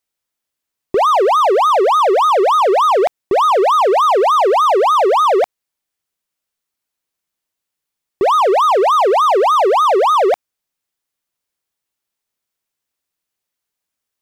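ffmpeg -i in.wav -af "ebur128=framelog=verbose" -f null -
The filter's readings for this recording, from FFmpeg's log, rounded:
Integrated loudness:
  I:         -12.7 LUFS
  Threshold: -22.7 LUFS
Loudness range:
  LRA:         8.6 LU
  Threshold: -34.6 LUFS
  LRA low:   -21.0 LUFS
  LRA high:  -12.4 LUFS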